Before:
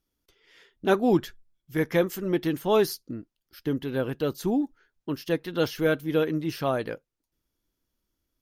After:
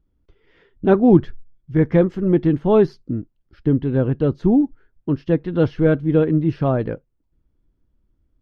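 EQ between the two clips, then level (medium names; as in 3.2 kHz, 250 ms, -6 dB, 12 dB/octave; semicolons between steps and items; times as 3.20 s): tape spacing loss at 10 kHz 38 dB; bass shelf 170 Hz +9 dB; bass shelf 370 Hz +4.5 dB; +5.5 dB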